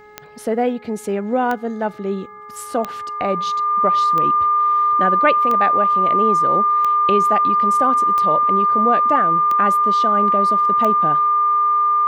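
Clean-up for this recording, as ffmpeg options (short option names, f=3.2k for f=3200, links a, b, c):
-af "adeclick=t=4,bandreject=f=420.8:t=h:w=4,bandreject=f=841.6:t=h:w=4,bandreject=f=1.2624k:t=h:w=4,bandreject=f=1.6832k:t=h:w=4,bandreject=f=2.104k:t=h:w=4,bandreject=f=1.2k:w=30"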